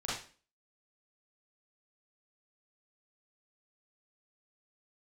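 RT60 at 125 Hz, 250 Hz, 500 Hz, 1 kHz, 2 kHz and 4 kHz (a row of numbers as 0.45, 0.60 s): 0.40, 0.50, 0.40, 0.40, 0.40, 0.40 s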